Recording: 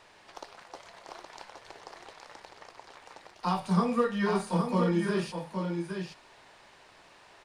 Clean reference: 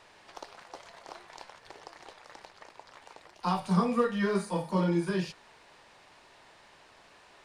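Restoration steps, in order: inverse comb 818 ms -5.5 dB

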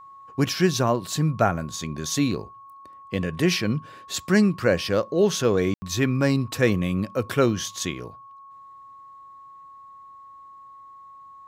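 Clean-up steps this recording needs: band-stop 1.1 kHz, Q 30; room tone fill 5.74–5.82 s

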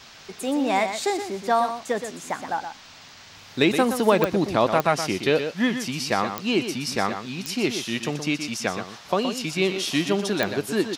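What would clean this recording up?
de-click; noise print and reduce 23 dB; inverse comb 122 ms -8.5 dB

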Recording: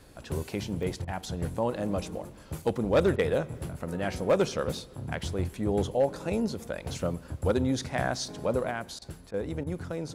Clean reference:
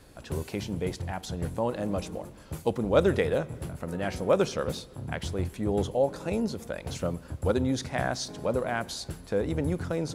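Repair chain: clip repair -16.5 dBFS; interpolate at 0.83/2.62/3.58 s, 2.2 ms; interpolate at 1.05/3.16/8.99/9.31/9.64 s, 26 ms; trim 0 dB, from 8.71 s +4.5 dB

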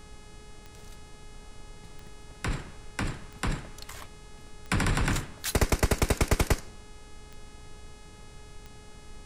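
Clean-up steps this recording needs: de-click; de-hum 421.2 Hz, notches 24; noise print and reduce 26 dB

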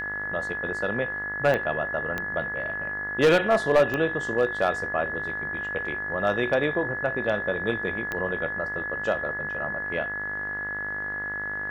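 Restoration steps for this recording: clip repair -13 dBFS; de-click; de-hum 50.8 Hz, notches 40; band-stop 1.7 kHz, Q 30

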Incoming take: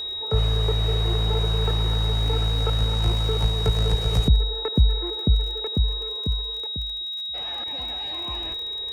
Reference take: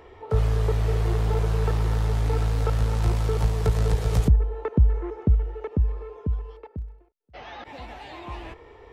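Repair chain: de-click; band-stop 3.8 kHz, Q 30

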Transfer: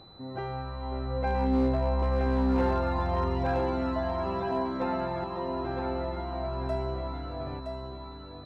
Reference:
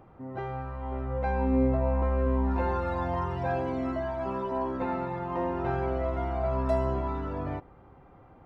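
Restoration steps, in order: clip repair -20 dBFS; band-stop 4 kHz, Q 30; inverse comb 967 ms -5.5 dB; trim 0 dB, from 5.24 s +5.5 dB

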